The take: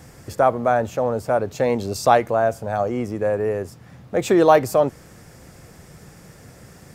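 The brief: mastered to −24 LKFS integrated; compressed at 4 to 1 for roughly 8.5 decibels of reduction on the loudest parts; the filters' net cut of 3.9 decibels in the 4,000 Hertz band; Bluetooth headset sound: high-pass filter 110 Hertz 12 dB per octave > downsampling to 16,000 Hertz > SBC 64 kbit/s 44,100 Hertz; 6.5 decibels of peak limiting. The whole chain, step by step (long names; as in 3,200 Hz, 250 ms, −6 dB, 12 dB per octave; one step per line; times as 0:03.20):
parametric band 4,000 Hz −5 dB
downward compressor 4 to 1, threshold −19 dBFS
brickwall limiter −15 dBFS
high-pass filter 110 Hz 12 dB per octave
downsampling to 16,000 Hz
level +3 dB
SBC 64 kbit/s 44,100 Hz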